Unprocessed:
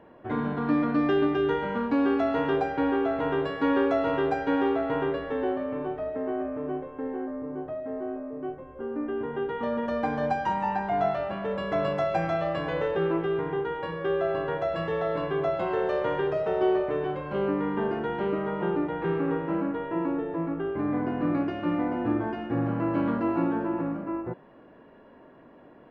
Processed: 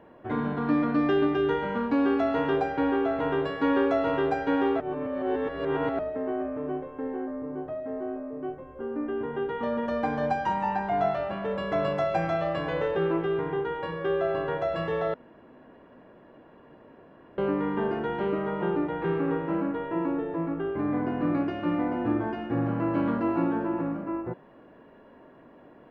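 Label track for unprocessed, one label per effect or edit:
4.800000	5.990000	reverse
15.140000	17.380000	fill with room tone

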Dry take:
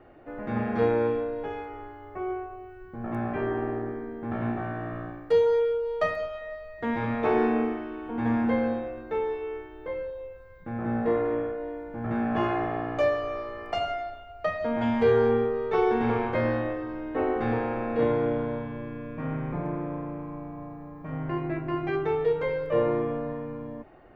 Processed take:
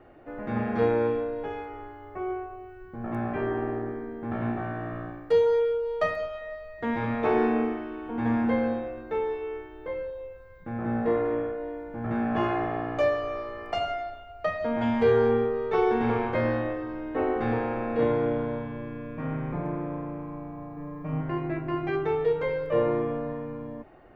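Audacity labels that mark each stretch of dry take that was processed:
20.760000	21.210000	comb filter 6.7 ms, depth 78%

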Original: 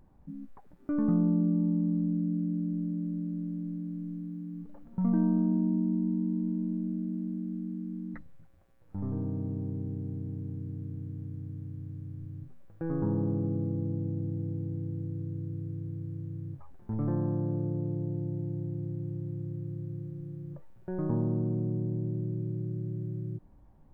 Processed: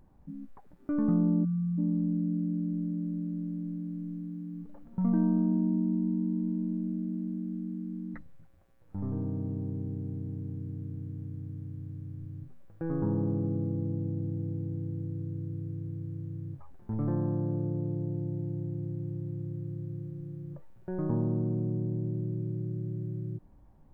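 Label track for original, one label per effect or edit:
1.450000	1.780000	time-frequency box erased 210–1,100 Hz

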